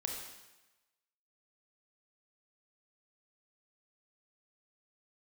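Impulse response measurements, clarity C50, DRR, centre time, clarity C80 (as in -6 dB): 3.0 dB, 0.5 dB, 51 ms, 5.0 dB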